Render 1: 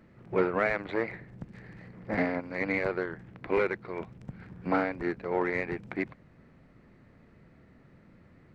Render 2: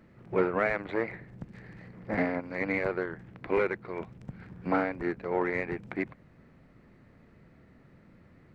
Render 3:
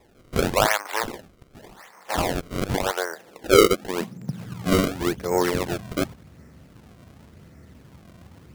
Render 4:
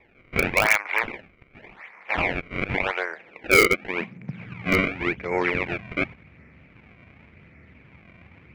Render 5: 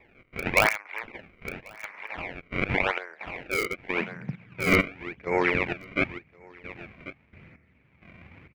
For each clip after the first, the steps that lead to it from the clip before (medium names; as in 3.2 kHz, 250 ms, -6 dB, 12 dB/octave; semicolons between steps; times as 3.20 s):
dynamic bell 4.6 kHz, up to -4 dB, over -51 dBFS, Q 1.1
high-pass sweep 920 Hz -> 68 Hz, 2.79–4.95 s; decimation with a swept rate 29×, swing 160% 0.89 Hz; trim +7 dB
resonant low-pass 2.3 kHz, resonance Q 8.4; in parallel at -7 dB: integer overflow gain 4.5 dB; on the sum: trim -7 dB
delay 1090 ms -14 dB; trance gate "xx..xx....xx" 131 bpm -12 dB